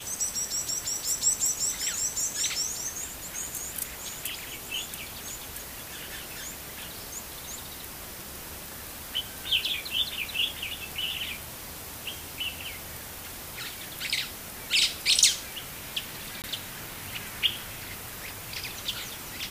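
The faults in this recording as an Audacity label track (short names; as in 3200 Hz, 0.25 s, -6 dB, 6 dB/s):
16.420000	16.440000	gap 18 ms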